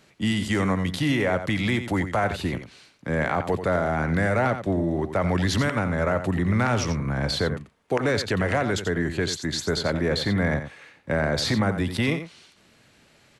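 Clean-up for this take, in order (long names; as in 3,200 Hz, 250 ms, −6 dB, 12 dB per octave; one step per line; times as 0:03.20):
clipped peaks rebuilt −13 dBFS
echo removal 88 ms −10 dB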